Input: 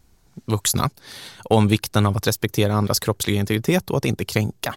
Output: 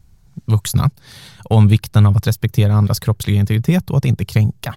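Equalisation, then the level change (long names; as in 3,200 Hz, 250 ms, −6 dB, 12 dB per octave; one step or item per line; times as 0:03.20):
dynamic equaliser 7,000 Hz, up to −4 dB, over −40 dBFS, Q 1.2
low shelf with overshoot 210 Hz +9.5 dB, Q 1.5
−1.5 dB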